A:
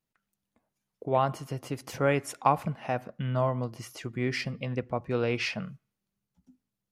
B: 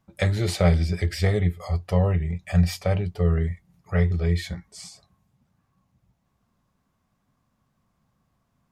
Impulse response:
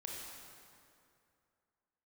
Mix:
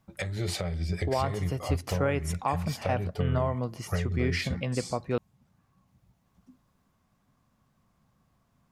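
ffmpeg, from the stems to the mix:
-filter_complex "[0:a]volume=2.5dB,asplit=3[a][b][c];[a]atrim=end=5.18,asetpts=PTS-STARTPTS,afade=t=out:st=5.176:d=0.004:c=hsin[d];[b]atrim=start=5.18:end=5.87,asetpts=PTS-STARTPTS,volume=0[e];[c]atrim=start=5.87,asetpts=PTS-STARTPTS,afade=t=in:d=0.004:c=hsin[f];[d][e][f]concat=n=3:v=0:a=1[g];[1:a]acompressor=threshold=-26dB:ratio=12,volume=1.5dB[h];[g][h]amix=inputs=2:normalize=0,alimiter=limit=-16dB:level=0:latency=1:release=300"

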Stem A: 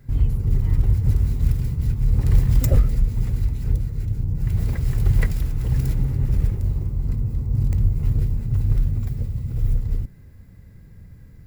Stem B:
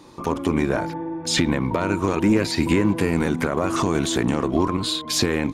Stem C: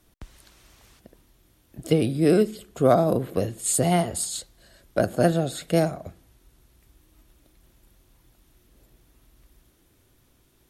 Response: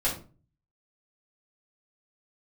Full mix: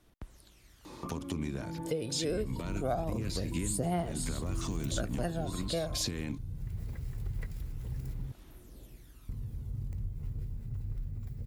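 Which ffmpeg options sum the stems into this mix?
-filter_complex "[0:a]adelay=2200,volume=-12dB,asplit=3[a][b][c];[a]atrim=end=8.32,asetpts=PTS-STARTPTS,afade=t=out:st=8.316:d=0.004:c=hsin[d];[b]atrim=start=8.32:end=9.29,asetpts=PTS-STARTPTS,volume=0[e];[c]atrim=start=9.29,asetpts=PTS-STARTPTS,afade=t=in:d=0.004:c=hsin[f];[d][e][f]concat=n=3:v=0:a=1[g];[1:a]acrossover=split=240|3000[h][i][j];[i]acompressor=threshold=-41dB:ratio=2.5[k];[h][k][j]amix=inputs=3:normalize=0,adelay=850,volume=-1dB[l];[2:a]dynaudnorm=f=370:g=9:m=11dB,aphaser=in_gain=1:out_gain=1:delay=2:decay=0.5:speed=0.24:type=sinusoidal,volume=-8.5dB,asplit=2[m][n];[n]apad=whole_len=281377[o];[l][o]sidechaincompress=threshold=-28dB:ratio=8:attack=12:release=148[p];[g][p][m]amix=inputs=3:normalize=0,acompressor=threshold=-38dB:ratio=2"

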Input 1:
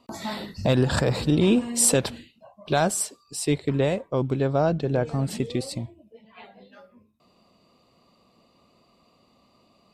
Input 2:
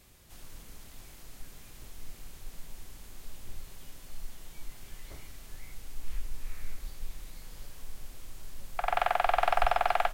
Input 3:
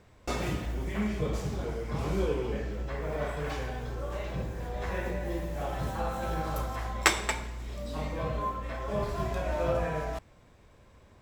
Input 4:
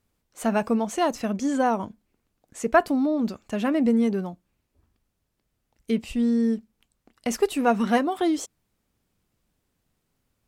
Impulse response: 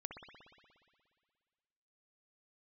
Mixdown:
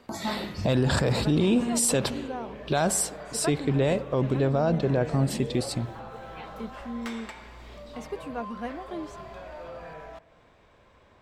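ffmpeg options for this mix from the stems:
-filter_complex "[0:a]volume=0dB,asplit=2[a][b];[b]volume=-10dB[c];[1:a]volume=-19dB[d];[2:a]asplit=2[e][f];[f]highpass=f=720:p=1,volume=10dB,asoftclip=type=tanh:threshold=-4dB[g];[e][g]amix=inputs=2:normalize=0,lowpass=f=1.8k:p=1,volume=-6dB,equalizer=f=3.5k:t=o:w=0.77:g=3.5,volume=-0.5dB,asplit=2[h][i];[i]volume=-20.5dB[j];[3:a]highshelf=f=4.9k:g=-9,adelay=700,volume=-13.5dB[k];[d][h]amix=inputs=2:normalize=0,asoftclip=type=tanh:threshold=-24dB,acompressor=threshold=-42dB:ratio=6,volume=0dB[l];[4:a]atrim=start_sample=2205[m];[c][j]amix=inputs=2:normalize=0[n];[n][m]afir=irnorm=-1:irlink=0[o];[a][k][l][o]amix=inputs=4:normalize=0,alimiter=limit=-14.5dB:level=0:latency=1:release=25"

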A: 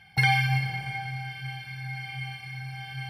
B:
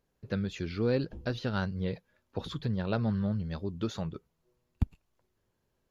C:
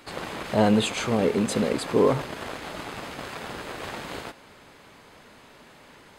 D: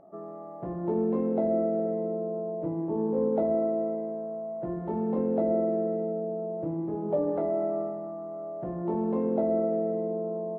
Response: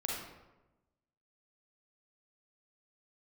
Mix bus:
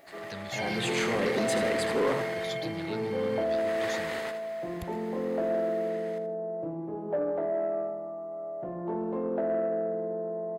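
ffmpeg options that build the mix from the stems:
-filter_complex "[0:a]alimiter=limit=-21.5dB:level=0:latency=1,adelay=350,volume=-4.5dB[a];[1:a]acrossover=split=240[b][c];[c]acompressor=threshold=-50dB:ratio=2[d];[b][d]amix=inputs=2:normalize=0,crystalizer=i=9.5:c=0,volume=-3.5dB[e];[2:a]equalizer=f=1.9k:t=o:w=0.32:g=11.5,volume=10dB,afade=t=in:st=0.63:d=0.41:silence=0.266073,afade=t=out:st=2.1:d=0.46:silence=0.251189,afade=t=in:st=3.45:d=0.37:silence=0.266073,asplit=2[f][g];[g]volume=-10dB[h];[3:a]volume=0.5dB,asplit=2[i][j];[j]volume=-13dB[k];[h][k]amix=inputs=2:normalize=0,aecho=0:1:80|160|240|320:1|0.28|0.0784|0.022[l];[a][e][f][i][l]amix=inputs=5:normalize=0,asoftclip=type=tanh:threshold=-18dB,lowshelf=f=250:g=-10"

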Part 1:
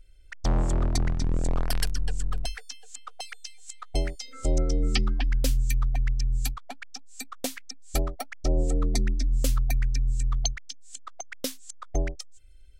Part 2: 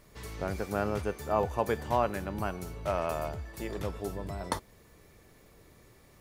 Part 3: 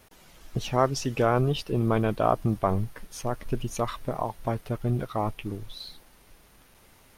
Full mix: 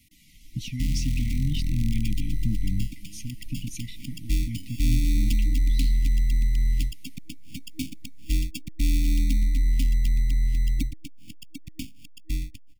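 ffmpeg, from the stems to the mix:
-filter_complex "[0:a]dynaudnorm=f=380:g=13:m=8dB,acrusher=samples=22:mix=1:aa=0.000001,asoftclip=type=tanh:threshold=-14dB,adelay=350,volume=-1dB[a];[1:a]acompressor=mode=upward:threshold=-41dB:ratio=2.5,adelay=2300,volume=-14.5dB[b];[2:a]volume=-1.5dB,asplit=2[c][d];[d]apad=whole_len=375236[e];[b][e]sidechaincompress=threshold=-35dB:ratio=8:attack=16:release=144[f];[a][f][c]amix=inputs=3:normalize=0,afftfilt=real='re*(1-between(b*sr/4096,320,1900))':imag='im*(1-between(b*sr/4096,320,1900))':win_size=4096:overlap=0.75,acrossover=split=290|3000[g][h][i];[h]acompressor=threshold=-47dB:ratio=1.5[j];[g][j][i]amix=inputs=3:normalize=0"

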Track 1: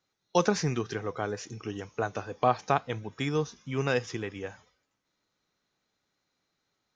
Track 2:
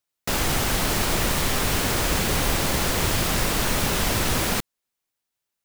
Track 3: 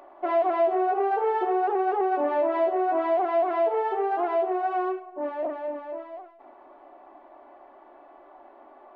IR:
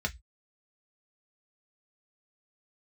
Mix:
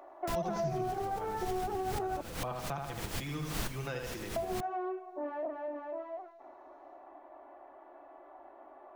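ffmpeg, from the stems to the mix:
-filter_complex "[0:a]bandreject=f=470:w=12,aecho=1:1:5.9:0.48,volume=-10dB,asplit=3[a][b][c];[b]volume=-4dB[d];[1:a]volume=-9dB[e];[2:a]volume=-5dB,asplit=3[f][g][h];[f]atrim=end=2.21,asetpts=PTS-STARTPTS,afade=t=out:st=2.206:d=0.004:c=hsin[i];[g]atrim=start=2.21:end=4.36,asetpts=PTS-STARTPTS,volume=0[j];[h]atrim=start=4.36,asetpts=PTS-STARTPTS,afade=t=in:d=0.004:c=hsin[k];[i][j][k]concat=n=3:v=0:a=1,asplit=2[l][m];[m]volume=-13dB[n];[c]apad=whole_len=249066[o];[e][o]sidechaincompress=threshold=-55dB:ratio=12:attack=6.2:release=112[p];[3:a]atrim=start_sample=2205[q];[n][q]afir=irnorm=-1:irlink=0[r];[d]aecho=0:1:77|154|231|308|385|462|539:1|0.5|0.25|0.125|0.0625|0.0312|0.0156[s];[a][p][l][r][s]amix=inputs=5:normalize=0,acrossover=split=210[t][u];[u]acompressor=threshold=-36dB:ratio=3[v];[t][v]amix=inputs=2:normalize=0"

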